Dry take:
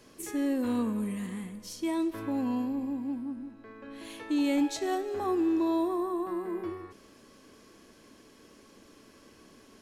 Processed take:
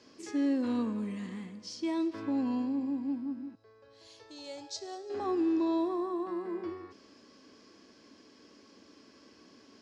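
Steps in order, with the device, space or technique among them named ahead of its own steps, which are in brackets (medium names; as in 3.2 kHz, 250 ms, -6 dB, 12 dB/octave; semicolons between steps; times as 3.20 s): car door speaker (cabinet simulation 94–6600 Hz, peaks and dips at 140 Hz -7 dB, 280 Hz +4 dB, 4.9 kHz +8 dB); 3.55–5.10 s: FFT filter 130 Hz 0 dB, 270 Hz -29 dB, 410 Hz -5 dB, 2.4 kHz -14 dB, 4.9 kHz 0 dB; trim -3 dB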